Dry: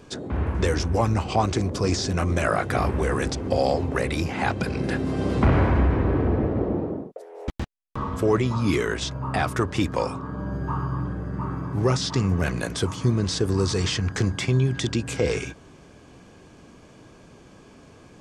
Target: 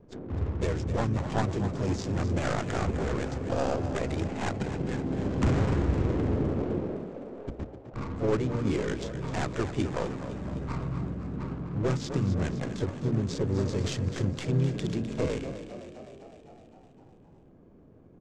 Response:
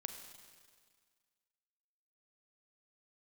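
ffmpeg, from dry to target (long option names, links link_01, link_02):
-filter_complex "[0:a]bandreject=frequency=60:width_type=h:width=6,bandreject=frequency=120:width_type=h:width=6,bandreject=frequency=180:width_type=h:width=6,bandreject=frequency=240:width_type=h:width=6,bandreject=frequency=300:width_type=h:width=6,asplit=2[link_01][link_02];[link_02]asetrate=55563,aresample=44100,atempo=0.793701,volume=-6dB[link_03];[link_01][link_03]amix=inputs=2:normalize=0,acrossover=split=520|3200[link_04][link_05][link_06];[link_05]aeval=exprs='max(val(0),0)':channel_layout=same[link_07];[link_04][link_07][link_06]amix=inputs=3:normalize=0,adynamicsmooth=sensitivity=3:basefreq=740,lowpass=frequency=7500:width_type=q:width=3.1,asplit=9[link_08][link_09][link_10][link_11][link_12][link_13][link_14][link_15][link_16];[link_09]adelay=256,afreqshift=44,volume=-11dB[link_17];[link_10]adelay=512,afreqshift=88,volume=-14.9dB[link_18];[link_11]adelay=768,afreqshift=132,volume=-18.8dB[link_19];[link_12]adelay=1024,afreqshift=176,volume=-22.6dB[link_20];[link_13]adelay=1280,afreqshift=220,volume=-26.5dB[link_21];[link_14]adelay=1536,afreqshift=264,volume=-30.4dB[link_22];[link_15]adelay=1792,afreqshift=308,volume=-34.3dB[link_23];[link_16]adelay=2048,afreqshift=352,volume=-38.1dB[link_24];[link_08][link_17][link_18][link_19][link_20][link_21][link_22][link_23][link_24]amix=inputs=9:normalize=0,volume=-5.5dB"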